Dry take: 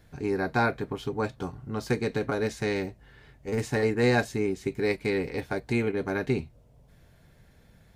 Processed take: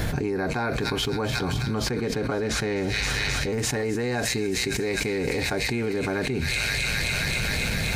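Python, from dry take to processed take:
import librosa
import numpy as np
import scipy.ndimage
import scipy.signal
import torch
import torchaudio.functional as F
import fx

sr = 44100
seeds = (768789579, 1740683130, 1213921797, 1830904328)

y = fx.high_shelf(x, sr, hz=4300.0, db=-10.0, at=(1.27, 3.5))
y = fx.echo_wet_highpass(y, sr, ms=264, feedback_pct=78, hz=3500.0, wet_db=-4.5)
y = fx.env_flatten(y, sr, amount_pct=100)
y = F.gain(torch.from_numpy(y), -6.0).numpy()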